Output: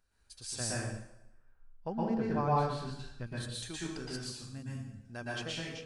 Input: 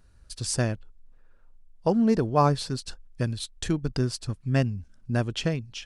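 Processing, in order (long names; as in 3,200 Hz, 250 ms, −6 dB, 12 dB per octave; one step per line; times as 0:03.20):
low-shelf EQ 380 Hz −11.5 dB
tuned comb filter 790 Hz, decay 0.17 s, harmonics all, mix 70%
0:00.60–0:03.27: bass and treble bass +9 dB, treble −14 dB
0:04.30–0:04.72: gain on a spectral selection 290–6,400 Hz −14 dB
dense smooth reverb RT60 0.82 s, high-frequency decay 0.9×, pre-delay 105 ms, DRR −6.5 dB
level −2.5 dB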